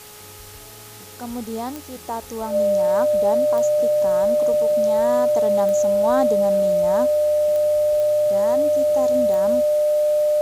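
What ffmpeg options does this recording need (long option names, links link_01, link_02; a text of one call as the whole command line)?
ffmpeg -i in.wav -af "adeclick=threshold=4,bandreject=frequency=420.2:width_type=h:width=4,bandreject=frequency=840.4:width_type=h:width=4,bandreject=frequency=1260.6:width_type=h:width=4,bandreject=frequency=600:width=30,afwtdn=0.0089" out.wav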